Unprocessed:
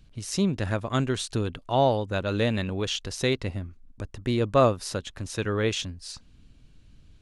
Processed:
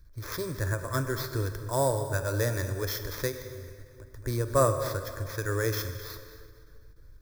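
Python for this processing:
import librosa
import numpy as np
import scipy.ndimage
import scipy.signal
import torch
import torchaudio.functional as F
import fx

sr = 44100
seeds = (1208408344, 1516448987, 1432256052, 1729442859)

y = x + 10.0 ** (-15.0 / 20.0) * np.pad(x, (int(224 * sr / 1000.0), 0))[:len(x)]
y = fx.level_steps(y, sr, step_db=22, at=(3.31, 4.19), fade=0.02)
y = y + 0.37 * np.pad(y, (int(1.2 * sr / 1000.0), 0))[:len(y)]
y = fx.sample_hold(y, sr, seeds[0], rate_hz=8600.0, jitter_pct=0)
y = fx.fixed_phaser(y, sr, hz=770.0, stages=6)
y = fx.rev_plate(y, sr, seeds[1], rt60_s=2.4, hf_ratio=0.75, predelay_ms=0, drr_db=8.0)
y = fx.end_taper(y, sr, db_per_s=170.0)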